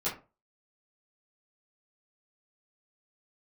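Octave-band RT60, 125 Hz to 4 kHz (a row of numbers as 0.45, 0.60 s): 0.40, 0.30, 0.35, 0.30, 0.25, 0.20 s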